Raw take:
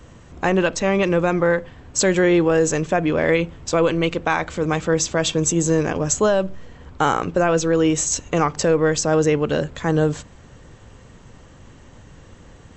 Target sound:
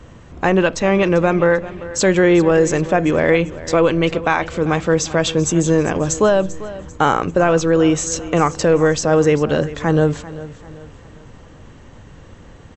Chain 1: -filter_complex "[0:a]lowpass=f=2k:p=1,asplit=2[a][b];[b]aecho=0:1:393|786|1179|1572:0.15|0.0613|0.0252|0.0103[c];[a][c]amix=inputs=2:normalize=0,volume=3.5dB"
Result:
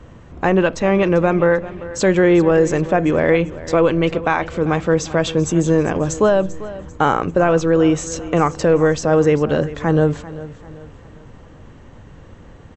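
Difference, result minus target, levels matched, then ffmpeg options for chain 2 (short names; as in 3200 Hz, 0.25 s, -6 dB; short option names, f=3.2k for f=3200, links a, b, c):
4000 Hz band -4.0 dB
-filter_complex "[0:a]lowpass=f=4.6k:p=1,asplit=2[a][b];[b]aecho=0:1:393|786|1179|1572:0.15|0.0613|0.0252|0.0103[c];[a][c]amix=inputs=2:normalize=0,volume=3.5dB"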